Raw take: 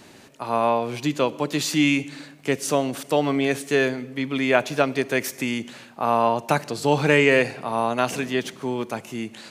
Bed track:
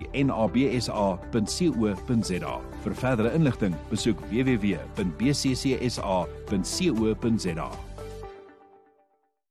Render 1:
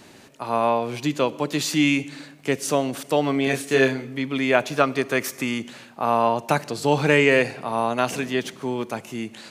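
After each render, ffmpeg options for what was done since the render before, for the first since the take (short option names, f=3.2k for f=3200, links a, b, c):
-filter_complex "[0:a]asettb=1/sr,asplit=3[a][b][c];[a]atrim=end=3.444[d];[b]atrim=start=3.44:end=4.19,asetpts=PTS-STARTPTS,afade=t=in:d=0.004:c=qsin,afade=t=out:st=0.746:d=0.004:c=qsin,asplit=2[e][f];[f]adelay=30,volume=-3.5dB[g];[e][g]amix=inputs=2:normalize=0,atrim=end_sample=33075[h];[c]atrim=start=4.186[i];[d][h]acrossfade=d=0.004:c1=hsin:c2=qsin[j];[j][i]acrossfade=d=0.004:c1=qsin:c2=hsin,asettb=1/sr,asplit=3[k][l][m];[k]atrim=end=4.774[n];[l]atrim=start=4.77:end=5.62,asetpts=PTS-STARTPTS,afade=t=in:d=0.004:c=qsin,afade=t=out:st=0.846:d=0.004:c=qsin,equalizer=f=1.2k:t=o:w=0.28:g=9.5[o];[m]atrim=start=5.616[p];[n][o]acrossfade=d=0.004:c1=hsin:c2=qsin[q];[q][p]acrossfade=d=0.004:c1=qsin:c2=hsin"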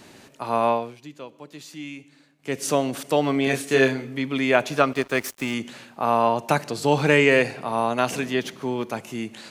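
-filter_complex "[0:a]asettb=1/sr,asplit=3[a][b][c];[a]atrim=end=4.934[d];[b]atrim=start=4.93:end=5.54,asetpts=PTS-STARTPTS,afade=t=in:d=0.004:c=qsin,afade=t=out:st=0.606:d=0.004:c=qsin,aeval=exprs='sgn(val(0))*max(abs(val(0))-0.0133,0)':c=same[e];[c]atrim=start=5.536[f];[d][e]acrossfade=d=0.004:c1=hsin:c2=qsin[g];[g][f]acrossfade=d=0.004:c1=qsin:c2=hsin,asettb=1/sr,asplit=3[h][i][j];[h]atrim=end=8.344[k];[i]atrim=start=8.34:end=8.94,asetpts=PTS-STARTPTS,afade=t=in:d=0.004:c=qsin,afade=t=out:st=0.596:d=0.004:c=qsin,equalizer=f=8.3k:t=o:w=0.37:g=-5.5[l];[j]atrim=start=8.936[m];[k][l]acrossfade=d=0.004:c1=hsin:c2=qsin[n];[n][m]acrossfade=d=0.004:c1=qsin:c2=hsin,asplit=3[o][p][q];[o]atrim=end=0.95,asetpts=PTS-STARTPTS,afade=t=out:st=0.71:d=0.24:silence=0.141254[r];[p]atrim=start=0.95:end=2.39,asetpts=PTS-STARTPTS,volume=-17dB[s];[q]atrim=start=2.39,asetpts=PTS-STARTPTS,afade=t=in:d=0.24:silence=0.141254[t];[r][s][t]concat=n=3:v=0:a=1"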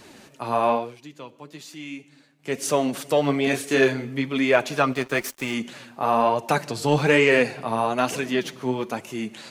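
-filter_complex "[0:a]flanger=delay=1.6:depth=7.3:regen=41:speed=1.1:shape=triangular,asplit=2[a][b];[b]asoftclip=type=tanh:threshold=-16dB,volume=-3.5dB[c];[a][c]amix=inputs=2:normalize=0"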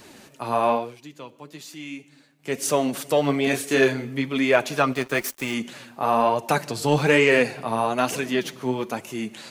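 -af "highshelf=f=11k:g=7"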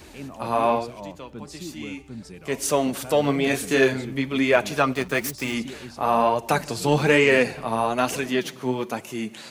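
-filter_complex "[1:a]volume=-13.5dB[a];[0:a][a]amix=inputs=2:normalize=0"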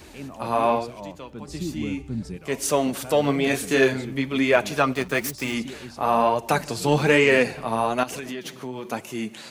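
-filter_complex "[0:a]asettb=1/sr,asplit=3[a][b][c];[a]atrim=end=1.484[d];[b]atrim=start=1.48:end=2.37,asetpts=PTS-STARTPTS,afade=t=in:d=0.004:c=qsin,afade=t=out:st=0.886:d=0.004:c=qsin,lowshelf=f=320:g=11.5[e];[c]atrim=start=2.366[f];[d][e]acrossfade=d=0.004:c1=hsin:c2=qsin[g];[g][f]acrossfade=d=0.004:c1=qsin:c2=hsin,asettb=1/sr,asplit=3[h][i][j];[h]atrim=end=8.034[k];[i]atrim=start=8.03:end=8.85,asetpts=PTS-STARTPTS,afade=t=in:d=0.004:c=qsin,afade=t=out:st=0.816:d=0.004:c=qsin,acompressor=threshold=-29dB:ratio=6:attack=3.2:release=140:knee=1:detection=peak[l];[j]atrim=start=8.846[m];[k][l]acrossfade=d=0.004:c1=hsin:c2=qsin[n];[n][m]acrossfade=d=0.004:c1=qsin:c2=hsin"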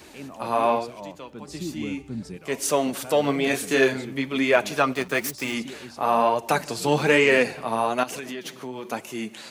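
-af "highpass=f=190:p=1"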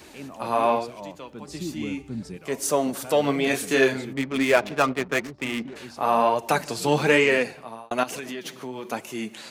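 -filter_complex "[0:a]asettb=1/sr,asplit=3[a][b][c];[a]atrim=end=2.494[d];[b]atrim=start=2.49:end=3.04,asetpts=PTS-STARTPTS,afade=t=in:d=0.004:c=qsin,afade=t=out:st=0.546:d=0.004:c=qsin,equalizer=f=2.7k:t=o:w=1.2:g=-6.5[e];[c]atrim=start=3.036[f];[d][e]acrossfade=d=0.004:c1=hsin:c2=qsin[g];[g][f]acrossfade=d=0.004:c1=qsin:c2=hsin,asplit=3[h][i][j];[h]afade=t=out:st=4.12:d=0.02[k];[i]adynamicsmooth=sensitivity=4:basefreq=780,afade=t=in:st=4.12:d=0.02,afade=t=out:st=5.75:d=0.02[l];[j]afade=t=in:st=5.75:d=0.02[m];[k][l][m]amix=inputs=3:normalize=0,asplit=2[n][o];[n]atrim=end=7.91,asetpts=PTS-STARTPTS,afade=t=out:st=7.15:d=0.76[p];[o]atrim=start=7.91,asetpts=PTS-STARTPTS,afade=t=in:d=0.004:c=hsin[q];[p][q]concat=n=2:v=0:a=1"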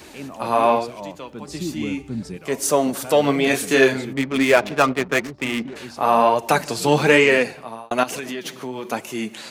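-af "volume=4.5dB,alimiter=limit=-3dB:level=0:latency=1"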